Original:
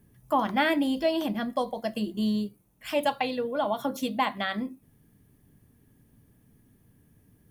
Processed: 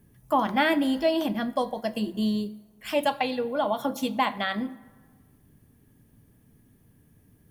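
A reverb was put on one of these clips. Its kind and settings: plate-style reverb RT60 1.5 s, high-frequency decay 0.55×, DRR 16.5 dB; gain +1.5 dB

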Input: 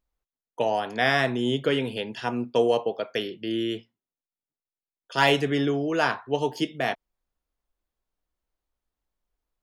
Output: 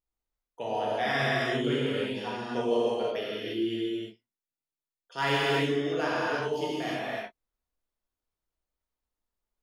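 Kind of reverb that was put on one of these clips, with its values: non-linear reverb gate 0.38 s flat, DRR -8 dB; gain -12 dB

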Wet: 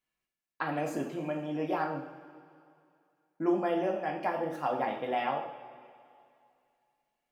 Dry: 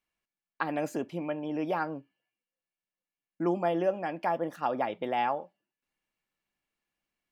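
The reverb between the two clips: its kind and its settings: two-slope reverb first 0.59 s, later 2.5 s, from -15 dB, DRR -0.5 dB; gain -3.5 dB

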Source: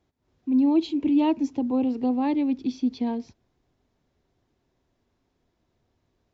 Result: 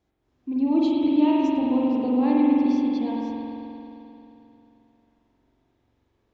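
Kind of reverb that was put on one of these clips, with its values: spring tank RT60 3.1 s, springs 44 ms, chirp 70 ms, DRR -5 dB; gain -3 dB

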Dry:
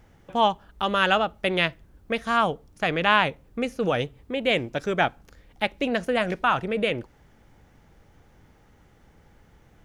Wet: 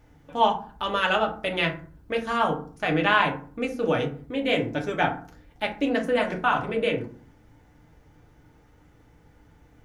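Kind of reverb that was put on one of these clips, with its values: FDN reverb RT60 0.44 s, low-frequency decay 1.45×, high-frequency decay 0.5×, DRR 0 dB; gain -4 dB

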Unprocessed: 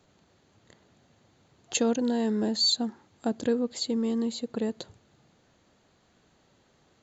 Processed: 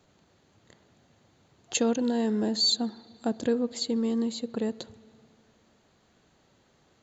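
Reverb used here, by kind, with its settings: spring tank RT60 2.3 s, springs 51/57 ms, chirp 20 ms, DRR 19.5 dB

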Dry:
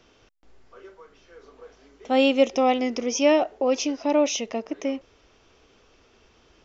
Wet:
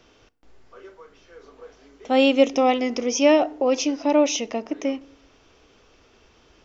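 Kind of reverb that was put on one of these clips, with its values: FDN reverb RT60 0.65 s, low-frequency decay 1.4×, high-frequency decay 0.6×, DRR 19 dB; gain +2 dB

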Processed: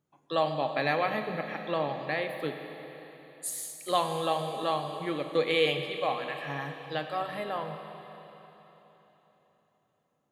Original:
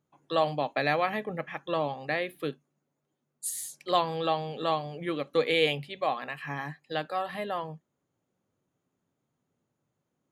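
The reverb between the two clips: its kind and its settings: Schroeder reverb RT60 3.8 s, combs from 29 ms, DRR 6 dB; gain -1.5 dB

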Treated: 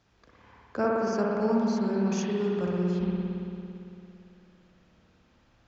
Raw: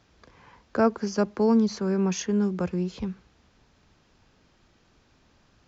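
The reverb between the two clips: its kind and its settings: spring tank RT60 2.8 s, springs 56 ms, chirp 75 ms, DRR -4 dB; gain -6.5 dB

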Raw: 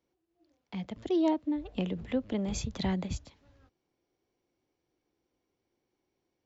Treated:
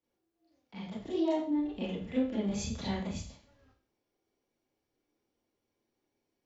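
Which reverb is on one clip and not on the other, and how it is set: Schroeder reverb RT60 0.43 s, combs from 27 ms, DRR -9 dB; gain -10.5 dB

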